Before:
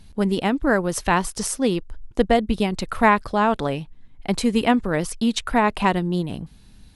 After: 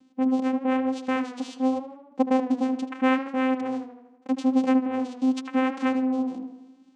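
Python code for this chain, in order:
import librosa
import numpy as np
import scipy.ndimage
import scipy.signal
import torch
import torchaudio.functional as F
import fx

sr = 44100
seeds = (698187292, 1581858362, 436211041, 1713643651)

y = fx.vocoder(x, sr, bands=4, carrier='saw', carrier_hz=260.0)
y = fx.echo_tape(y, sr, ms=77, feedback_pct=63, wet_db=-10.5, lp_hz=3300.0, drive_db=9.0, wow_cents=38)
y = y * librosa.db_to_amplitude(-3.5)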